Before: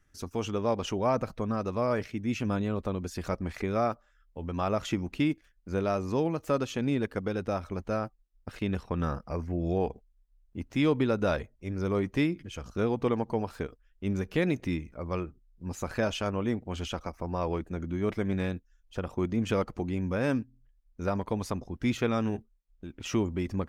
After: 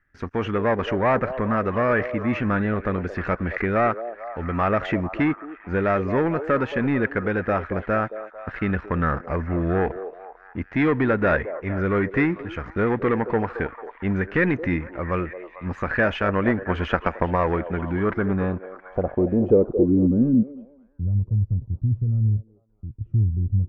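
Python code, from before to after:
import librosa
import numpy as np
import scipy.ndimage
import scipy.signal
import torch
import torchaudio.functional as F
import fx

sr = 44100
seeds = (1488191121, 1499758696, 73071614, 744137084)

y = fx.leveller(x, sr, passes=2)
y = fx.filter_sweep_lowpass(y, sr, from_hz=1800.0, to_hz=110.0, start_s=17.93, end_s=21.12, q=3.9)
y = fx.echo_stepped(y, sr, ms=223, hz=500.0, octaves=0.7, feedback_pct=70, wet_db=-8.5)
y = fx.transient(y, sr, attack_db=8, sustain_db=1, at=(16.28, 17.55))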